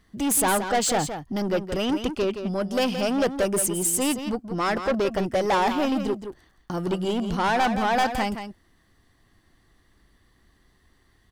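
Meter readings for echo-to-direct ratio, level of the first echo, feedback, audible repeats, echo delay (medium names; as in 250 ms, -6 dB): -9.0 dB, -9.0 dB, no regular repeats, 1, 171 ms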